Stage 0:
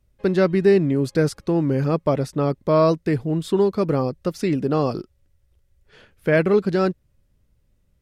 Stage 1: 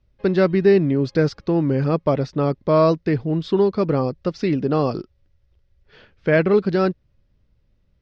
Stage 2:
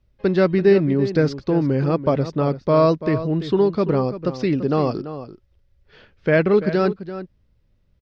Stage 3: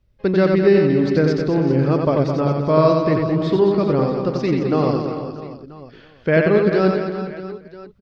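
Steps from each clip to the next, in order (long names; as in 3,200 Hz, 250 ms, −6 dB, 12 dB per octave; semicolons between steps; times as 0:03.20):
Butterworth low-pass 5,500 Hz 36 dB per octave; level +1 dB
slap from a distant wall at 58 metres, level −12 dB
reverse bouncing-ball delay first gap 90 ms, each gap 1.4×, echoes 5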